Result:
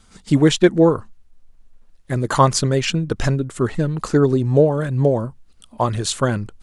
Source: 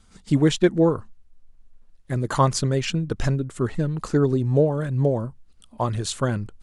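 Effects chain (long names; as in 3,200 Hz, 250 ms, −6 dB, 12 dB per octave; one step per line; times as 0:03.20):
low-shelf EQ 230 Hz −4 dB
level +6 dB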